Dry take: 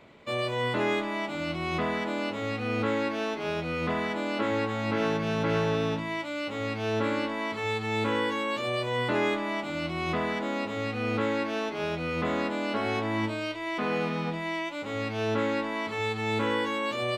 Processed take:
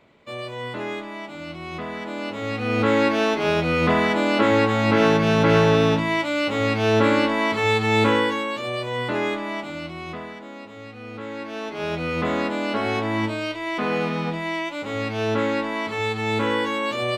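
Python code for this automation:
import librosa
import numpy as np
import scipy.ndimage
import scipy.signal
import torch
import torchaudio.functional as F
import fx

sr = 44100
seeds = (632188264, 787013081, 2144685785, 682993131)

y = fx.gain(x, sr, db=fx.line((1.86, -3.0), (3.03, 10.0), (8.05, 10.0), (8.54, 2.0), (9.6, 2.0), (10.4, -8.0), (11.14, -8.0), (11.95, 5.0)))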